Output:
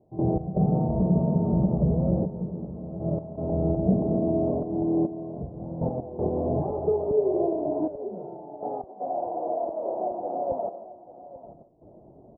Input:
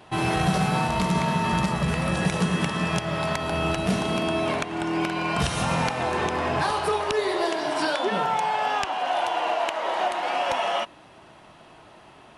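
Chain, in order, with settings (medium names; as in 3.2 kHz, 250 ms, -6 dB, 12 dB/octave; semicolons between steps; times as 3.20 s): steep low-pass 640 Hz 36 dB/octave; trance gate ".x.xxxxxxxxx..." 80 bpm -12 dB; on a send: delay 841 ms -16 dB; on the sum: trim +3 dB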